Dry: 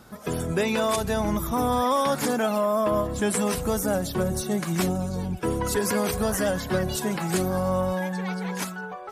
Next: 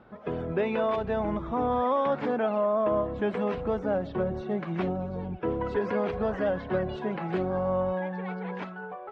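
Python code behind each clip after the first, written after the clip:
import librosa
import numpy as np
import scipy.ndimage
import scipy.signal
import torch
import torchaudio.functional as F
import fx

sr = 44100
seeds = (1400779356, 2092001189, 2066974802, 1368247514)

y = scipy.signal.sosfilt(scipy.signal.butter(4, 3000.0, 'lowpass', fs=sr, output='sos'), x)
y = fx.peak_eq(y, sr, hz=530.0, db=6.5, octaves=2.1)
y = y * librosa.db_to_amplitude(-7.5)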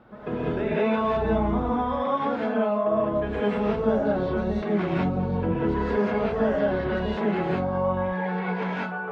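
y = fx.rider(x, sr, range_db=4, speed_s=0.5)
y = fx.rev_gated(y, sr, seeds[0], gate_ms=230, shape='rising', drr_db=-7.5)
y = y * librosa.db_to_amplitude(-3.5)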